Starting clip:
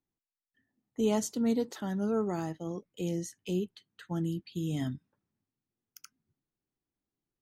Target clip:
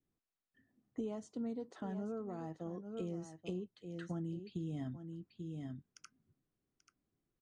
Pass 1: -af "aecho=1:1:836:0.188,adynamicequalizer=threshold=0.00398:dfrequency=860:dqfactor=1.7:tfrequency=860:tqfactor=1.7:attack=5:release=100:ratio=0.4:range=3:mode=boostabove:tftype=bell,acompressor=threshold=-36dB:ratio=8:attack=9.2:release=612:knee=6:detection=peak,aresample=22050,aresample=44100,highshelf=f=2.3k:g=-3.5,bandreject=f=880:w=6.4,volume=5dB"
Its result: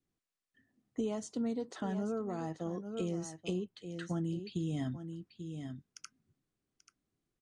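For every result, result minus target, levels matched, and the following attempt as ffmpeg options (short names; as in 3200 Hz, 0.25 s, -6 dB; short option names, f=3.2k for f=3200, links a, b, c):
compressor: peak gain reduction -5 dB; 4000 Hz band +4.5 dB
-af "aecho=1:1:836:0.188,adynamicequalizer=threshold=0.00398:dfrequency=860:dqfactor=1.7:tfrequency=860:tqfactor=1.7:attack=5:release=100:ratio=0.4:range=3:mode=boostabove:tftype=bell,acompressor=threshold=-42dB:ratio=8:attack=9.2:release=612:knee=6:detection=peak,aresample=22050,aresample=44100,highshelf=f=2.3k:g=-3.5,bandreject=f=880:w=6.4,volume=5dB"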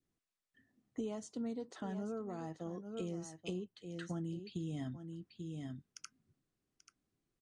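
4000 Hz band +5.5 dB
-af "aecho=1:1:836:0.188,adynamicequalizer=threshold=0.00398:dfrequency=860:dqfactor=1.7:tfrequency=860:tqfactor=1.7:attack=5:release=100:ratio=0.4:range=3:mode=boostabove:tftype=bell,acompressor=threshold=-42dB:ratio=8:attack=9.2:release=612:knee=6:detection=peak,aresample=22050,aresample=44100,highshelf=f=2.3k:g=-12,bandreject=f=880:w=6.4,volume=5dB"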